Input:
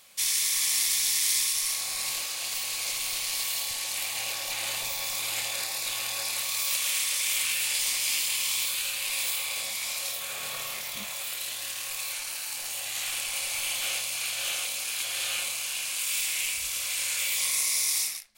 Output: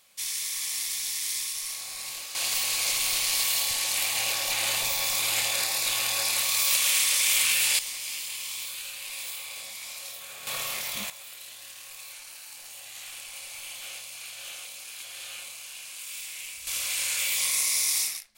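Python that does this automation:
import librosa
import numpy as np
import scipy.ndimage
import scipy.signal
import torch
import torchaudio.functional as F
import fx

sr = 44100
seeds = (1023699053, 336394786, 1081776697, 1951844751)

y = fx.gain(x, sr, db=fx.steps((0.0, -5.5), (2.35, 4.5), (7.79, -7.0), (10.47, 2.5), (11.1, -9.5), (16.67, 1.0)))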